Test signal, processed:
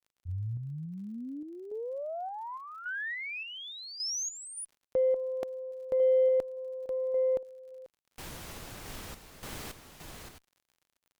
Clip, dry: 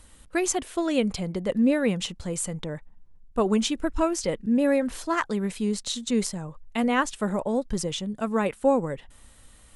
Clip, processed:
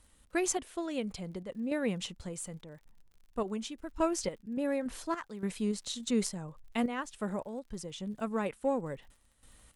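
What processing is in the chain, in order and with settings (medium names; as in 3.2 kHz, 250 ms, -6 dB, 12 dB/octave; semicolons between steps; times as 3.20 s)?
random-step tremolo, depth 75%; Chebyshev shaper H 8 -40 dB, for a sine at -11.5 dBFS; crackle 57 per s -48 dBFS; trim -5 dB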